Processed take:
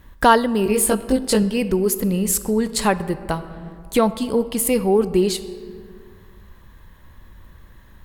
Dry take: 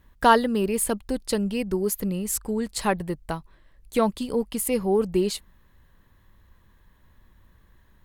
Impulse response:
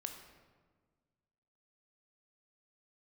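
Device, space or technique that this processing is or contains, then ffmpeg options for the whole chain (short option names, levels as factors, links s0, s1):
ducked reverb: -filter_complex "[0:a]asettb=1/sr,asplit=3[s0][s1][s2];[s0]atrim=end=0.644[s3];[s1]atrim=start=0.64:end=1.43,asetpts=PTS-STARTPTS,afade=t=in:d=0.004:c=qsin,afade=t=out:st=0.786:d=0.004:c=qsin,asplit=2[s4][s5];[s5]adelay=19,volume=0.794[s6];[s4][s6]amix=inputs=2:normalize=0,atrim=end_sample=34839[s7];[s2]atrim=start=1.426[s8];[s3][s7]acrossfade=d=0.004:c1=hsin:c2=qsin[s9];[s9][s8]acrossfade=d=0.004:c1=qsin:c2=hsin,asplit=3[s10][s11][s12];[1:a]atrim=start_sample=2205[s13];[s11][s13]afir=irnorm=-1:irlink=0[s14];[s12]apad=whole_len=354991[s15];[s14][s15]sidechaincompress=threshold=0.0447:ratio=8:attack=8:release=967,volume=2.51[s16];[s10][s16]amix=inputs=2:normalize=0,volume=1.19"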